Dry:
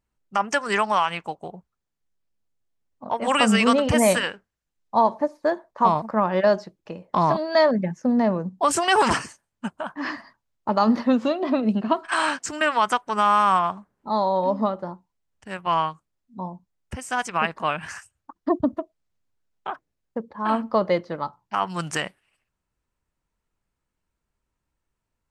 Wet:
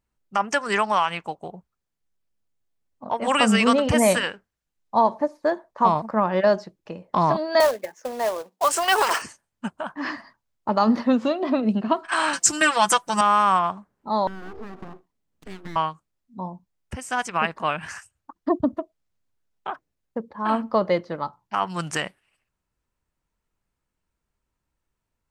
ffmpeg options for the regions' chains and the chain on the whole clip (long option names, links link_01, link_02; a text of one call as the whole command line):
ffmpeg -i in.wav -filter_complex "[0:a]asettb=1/sr,asplit=3[link_01][link_02][link_03];[link_01]atrim=end=7.604[link_04];[link_02]atrim=start=7.6:end=9.22,asetpts=PTS-STARTPTS,afade=type=in:duration=0.004:curve=qsin,afade=type=out:start_time=1.616:duration=0.004:curve=qsin,highpass=frequency=440:width=0.5412,highpass=frequency=440:width=1.3066,bandreject=frequency=860:width=26,acrusher=bits=3:mode=log:mix=0:aa=0.000001[link_05];[link_03]atrim=start=9.216[link_06];[link_04][link_05]acrossfade=duration=0.004:curve1=hsin:curve2=qsin[link_07];[link_07][link_06]acrossfade=duration=0.004:curve1=qsin:curve2=hsin,asettb=1/sr,asplit=3[link_08][link_09][link_10];[link_08]atrim=end=12.334[link_11];[link_09]atrim=start=12.33:end=13.21,asetpts=PTS-STARTPTS,afade=type=in:duration=0.004:curve=qsin,afade=type=out:start_time=0.876:duration=0.004:curve=qsin,bass=frequency=250:gain=4,treble=frequency=4000:gain=14,aecho=1:1:5.9:0.75,atrim=end_sample=38808[link_12];[link_10]atrim=start=13.206[link_13];[link_11][link_12]acrossfade=duration=0.004:curve1=hsin:curve2=qsin[link_14];[link_14][link_13]acrossfade=duration=0.004:curve1=qsin:curve2=hsin,asettb=1/sr,asplit=3[link_15][link_16][link_17];[link_15]atrim=end=14.274[link_18];[link_16]atrim=start=14.27:end=15.76,asetpts=PTS-STARTPTS,afade=type=in:duration=0.004:curve=qsin,afade=type=out:start_time=1.486:duration=0.004:curve=qsin,acompressor=threshold=-35dB:ratio=8:attack=3.2:release=140:knee=1:detection=peak,aeval=exprs='abs(val(0))':channel_layout=same,equalizer=frequency=240:width_type=o:width=2:gain=10[link_19];[link_17]atrim=start=15.756[link_20];[link_18][link_19]acrossfade=duration=0.004:curve1=hsin:curve2=qsin[link_21];[link_21][link_20]acrossfade=duration=0.004:curve1=qsin:curve2=hsin" out.wav